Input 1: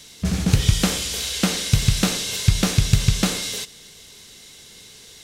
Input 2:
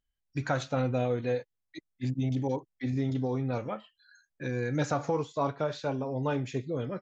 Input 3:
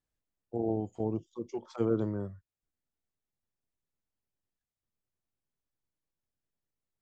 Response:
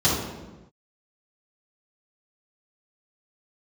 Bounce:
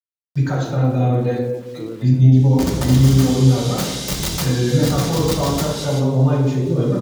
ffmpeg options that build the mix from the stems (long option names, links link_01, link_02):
-filter_complex "[0:a]aeval=exprs='(mod(5.62*val(0)+1,2)-1)/5.62':channel_layout=same,adelay=2350,volume=-4.5dB,asplit=2[link_01][link_02];[link_02]volume=-17.5dB[link_03];[1:a]bandreject=frequency=108.9:width_type=h:width=4,bandreject=frequency=217.8:width_type=h:width=4,bandreject=frequency=326.7:width_type=h:width=4,alimiter=limit=-21.5dB:level=0:latency=1:release=299,volume=-3dB,asplit=3[link_04][link_05][link_06];[link_05]volume=-5dB[link_07];[2:a]volume=-4dB[link_08];[link_06]apad=whole_len=334580[link_09];[link_01][link_09]sidechaincompress=threshold=-37dB:ratio=8:attack=10:release=272[link_10];[3:a]atrim=start_sample=2205[link_11];[link_03][link_07]amix=inputs=2:normalize=0[link_12];[link_12][link_11]afir=irnorm=-1:irlink=0[link_13];[link_10][link_04][link_08][link_13]amix=inputs=4:normalize=0,aeval=exprs='val(0)*gte(abs(val(0)),0.00891)':channel_layout=same"